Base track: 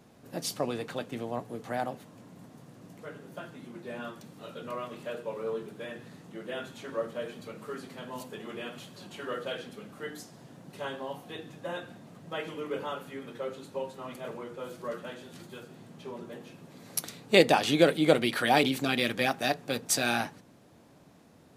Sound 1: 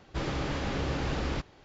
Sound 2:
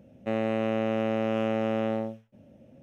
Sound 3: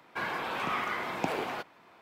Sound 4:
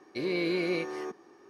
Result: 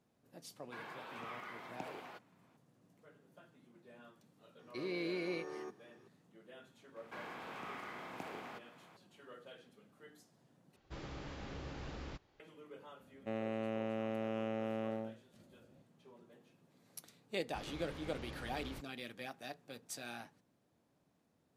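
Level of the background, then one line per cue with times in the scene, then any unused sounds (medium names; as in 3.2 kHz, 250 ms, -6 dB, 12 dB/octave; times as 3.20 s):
base track -19 dB
0.56 s: add 3 -15.5 dB + high-pass 85 Hz
4.59 s: add 4 -9.5 dB
6.96 s: add 3 -17.5 dB + spectral levelling over time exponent 0.6
10.76 s: replace with 1 -15 dB
13.00 s: add 2 -11.5 dB
17.40 s: add 1 -17 dB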